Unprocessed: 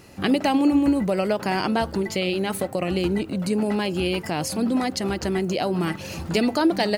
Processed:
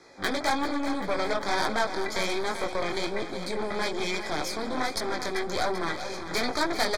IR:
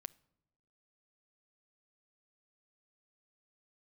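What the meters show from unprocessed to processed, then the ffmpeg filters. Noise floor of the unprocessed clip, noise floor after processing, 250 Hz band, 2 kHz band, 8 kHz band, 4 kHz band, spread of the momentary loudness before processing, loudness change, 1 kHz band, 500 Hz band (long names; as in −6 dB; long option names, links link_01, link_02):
−37 dBFS, −37 dBFS, −12.0 dB, +0.5 dB, −2.0 dB, −1.5 dB, 6 LU, −6.0 dB, −1.5 dB, −5.5 dB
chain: -filter_complex "[0:a]lowpass=9500,acrossover=split=320 6900:gain=0.126 1 0.158[link_01][link_02][link_03];[link_01][link_02][link_03]amix=inputs=3:normalize=0,flanger=delay=17:depth=6.6:speed=1.2,aeval=exprs='0.224*(cos(1*acos(clip(val(0)/0.224,-1,1)))-cos(1*PI/2))+0.0355*(cos(8*acos(clip(val(0)/0.224,-1,1)))-cos(8*PI/2))':channel_layout=same,acrossover=split=790|930[link_04][link_05][link_06];[link_04]asoftclip=type=tanh:threshold=-27.5dB[link_07];[link_07][link_05][link_06]amix=inputs=3:normalize=0,asuperstop=centerf=2800:order=12:qfactor=4.4,aecho=1:1:390|780|1170|1560|1950|2340:0.299|0.167|0.0936|0.0524|0.0294|0.0164,volume=2dB"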